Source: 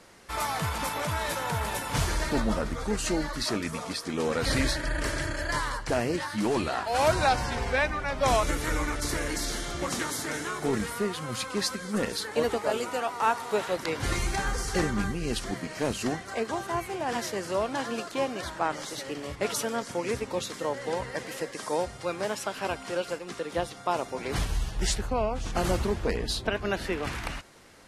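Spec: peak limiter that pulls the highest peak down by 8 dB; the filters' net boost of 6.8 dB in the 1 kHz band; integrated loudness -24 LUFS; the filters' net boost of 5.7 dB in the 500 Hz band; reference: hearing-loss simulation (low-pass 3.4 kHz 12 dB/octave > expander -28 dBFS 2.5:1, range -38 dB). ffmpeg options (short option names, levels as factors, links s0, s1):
-af "equalizer=f=500:t=o:g=5,equalizer=f=1000:t=o:g=7,alimiter=limit=0.211:level=0:latency=1,lowpass=3400,agate=range=0.0126:threshold=0.0398:ratio=2.5,volume=1.41"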